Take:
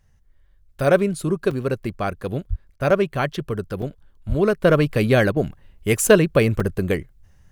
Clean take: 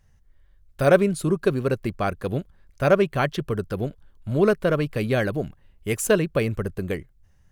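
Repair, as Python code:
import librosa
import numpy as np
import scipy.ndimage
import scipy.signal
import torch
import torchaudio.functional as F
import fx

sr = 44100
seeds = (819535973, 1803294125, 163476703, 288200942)

y = fx.highpass(x, sr, hz=140.0, slope=24, at=(2.49, 2.61), fade=0.02)
y = fx.highpass(y, sr, hz=140.0, slope=24, at=(4.28, 4.4), fade=0.02)
y = fx.fix_interpolate(y, sr, at_s=(1.51, 2.9, 3.82, 6.6), length_ms=4.0)
y = fx.fix_interpolate(y, sr, at_s=(2.76, 5.32), length_ms=43.0)
y = fx.gain(y, sr, db=fx.steps((0.0, 0.0), (4.64, -6.0)))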